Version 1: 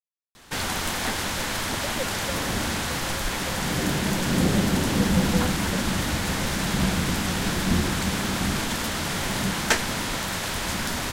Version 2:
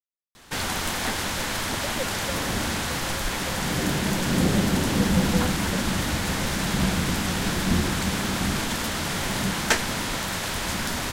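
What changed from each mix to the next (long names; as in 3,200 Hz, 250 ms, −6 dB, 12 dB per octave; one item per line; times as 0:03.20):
nothing changed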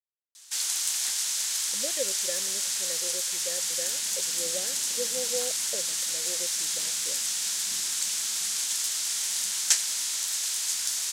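background: add resonant band-pass 6,900 Hz, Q 1.3
master: add high-shelf EQ 4,300 Hz +10.5 dB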